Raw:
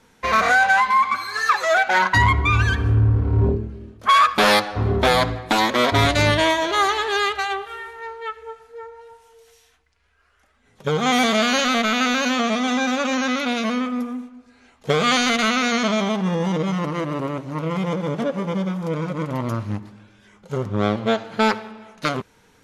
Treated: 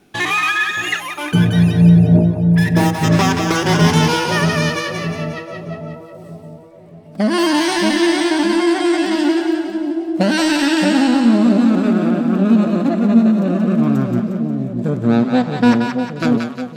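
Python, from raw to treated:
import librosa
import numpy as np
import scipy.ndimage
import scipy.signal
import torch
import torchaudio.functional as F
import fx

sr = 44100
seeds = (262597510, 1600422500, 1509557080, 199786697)

p1 = fx.speed_glide(x, sr, from_pct=163, to_pct=107)
p2 = fx.peak_eq(p1, sr, hz=220.0, db=13.5, octaves=1.7)
p3 = p2 + fx.echo_split(p2, sr, split_hz=700.0, low_ms=624, high_ms=178, feedback_pct=52, wet_db=-4.5, dry=0)
p4 = fx.spec_box(p3, sr, start_s=1.0, length_s=2.04, low_hz=970.0, high_hz=8400.0, gain_db=-9)
y = F.gain(torch.from_numpy(p4), -2.5).numpy()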